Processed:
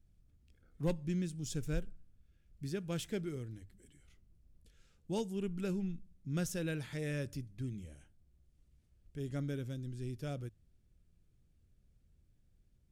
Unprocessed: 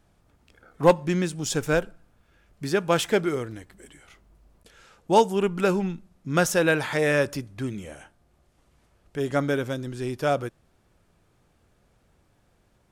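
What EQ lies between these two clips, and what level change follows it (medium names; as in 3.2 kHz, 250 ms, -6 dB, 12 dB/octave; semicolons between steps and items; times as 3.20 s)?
amplifier tone stack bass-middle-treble 10-0-1; hum notches 50/100 Hz; +6.0 dB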